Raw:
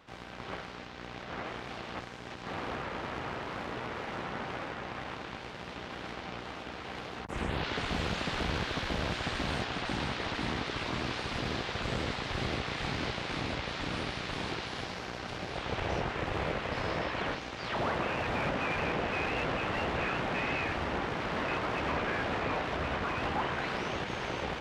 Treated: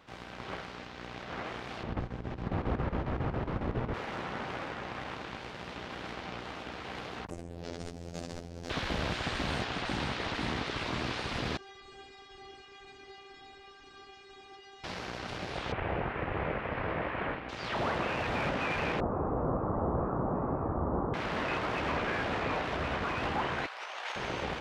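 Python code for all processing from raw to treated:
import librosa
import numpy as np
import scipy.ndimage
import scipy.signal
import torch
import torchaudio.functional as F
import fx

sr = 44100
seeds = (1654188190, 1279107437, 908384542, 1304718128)

y = fx.chain(x, sr, fx.tilt_eq(slope=-4.0),
    fx.chopper(hz=7.3, depth_pct=65, duty_pct=75), at=(1.83, 3.94))
y = fx.chain(y, sr, fx.band_shelf(hz=1900.0, db=-15.0, octaves=2.5),
    fx.over_compress(threshold_db=-40.0, ratio=-1.0),
    fx.robotise(hz=85.3), at=(7.3, 8.7))
y = fx.chain(y, sr, fx.brickwall_lowpass(high_hz=8800.0),
    fx.peak_eq(hz=270.0, db=8.0, octaves=0.31),
    fx.stiff_resonator(f0_hz=390.0, decay_s=0.34, stiffness=0.002), at=(11.57, 14.84))
y = fx.chain(y, sr, fx.cvsd(bps=32000),
    fx.lowpass(hz=2500.0, slope=24), at=(15.72, 17.49))
y = fx.chain(y, sr, fx.ellip_lowpass(hz=1200.0, order=4, stop_db=70),
    fx.low_shelf(hz=380.0, db=6.5), at=(19.0, 21.14))
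y = fx.chain(y, sr, fx.highpass(hz=640.0, slope=24),
    fx.over_compress(threshold_db=-40.0, ratio=-0.5), at=(23.66, 24.16))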